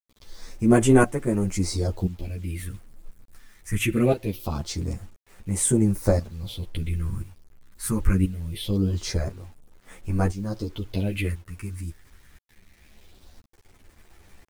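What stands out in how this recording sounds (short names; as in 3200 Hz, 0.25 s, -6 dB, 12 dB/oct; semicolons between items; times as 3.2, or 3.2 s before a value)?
tremolo saw up 0.97 Hz, depth 80%; phasing stages 4, 0.23 Hz, lowest notch 540–4200 Hz; a quantiser's noise floor 10-bit, dither none; a shimmering, thickened sound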